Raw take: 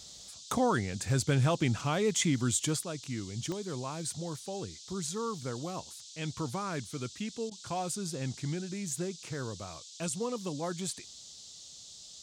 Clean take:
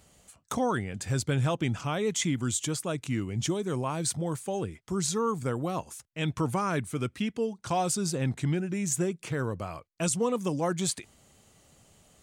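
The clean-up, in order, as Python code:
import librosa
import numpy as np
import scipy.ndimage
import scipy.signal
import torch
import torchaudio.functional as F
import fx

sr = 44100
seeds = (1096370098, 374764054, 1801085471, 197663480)

y = fx.fix_declick_ar(x, sr, threshold=10.0)
y = fx.fix_interpolate(y, sr, at_s=(7.5,), length_ms=11.0)
y = fx.noise_reduce(y, sr, print_start_s=11.63, print_end_s=12.13, reduce_db=11.0)
y = fx.fix_level(y, sr, at_s=2.83, step_db=7.0)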